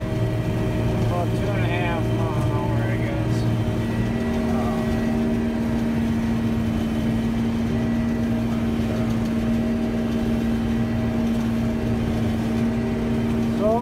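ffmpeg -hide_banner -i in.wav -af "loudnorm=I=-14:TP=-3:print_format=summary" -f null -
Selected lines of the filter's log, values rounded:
Input Integrated:    -22.9 LUFS
Input True Peak:     -10.3 dBTP
Input LRA:             0.3 LU
Input Threshold:     -32.9 LUFS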